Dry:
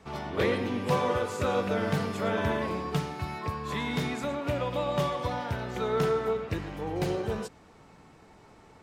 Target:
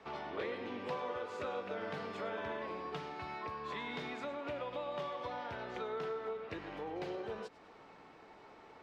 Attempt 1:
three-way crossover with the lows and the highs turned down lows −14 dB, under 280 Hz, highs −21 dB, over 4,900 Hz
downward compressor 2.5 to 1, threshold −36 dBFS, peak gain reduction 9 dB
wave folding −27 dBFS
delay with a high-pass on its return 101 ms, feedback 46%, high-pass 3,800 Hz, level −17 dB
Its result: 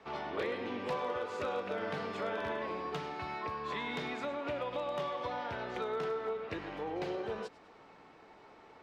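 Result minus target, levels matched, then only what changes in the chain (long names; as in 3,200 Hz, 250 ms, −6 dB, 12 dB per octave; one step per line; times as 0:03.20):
downward compressor: peak gain reduction −4 dB
change: downward compressor 2.5 to 1, threshold −42.5 dBFS, peak gain reduction 13 dB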